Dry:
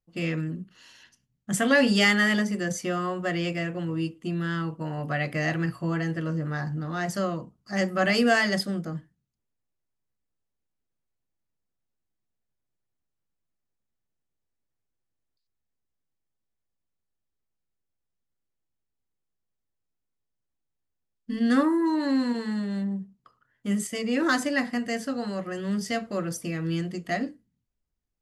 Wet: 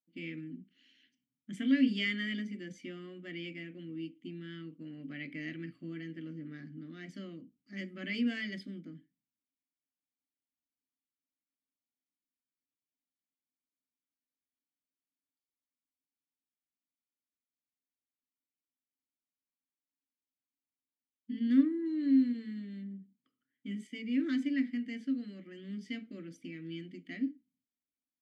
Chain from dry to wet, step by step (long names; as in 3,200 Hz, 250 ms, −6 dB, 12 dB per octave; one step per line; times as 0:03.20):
formant filter i